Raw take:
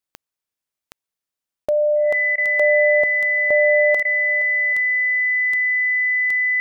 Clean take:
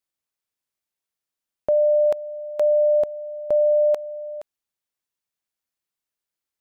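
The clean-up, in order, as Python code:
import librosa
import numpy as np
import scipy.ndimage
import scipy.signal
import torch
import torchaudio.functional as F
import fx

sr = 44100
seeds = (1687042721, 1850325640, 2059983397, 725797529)

y = fx.fix_declick_ar(x, sr, threshold=10.0)
y = fx.notch(y, sr, hz=2000.0, q=30.0)
y = fx.fix_interpolate(y, sr, at_s=(1.66, 2.36, 4.03), length_ms=19.0)
y = fx.fix_echo_inverse(y, sr, delay_ms=782, level_db=-21.5)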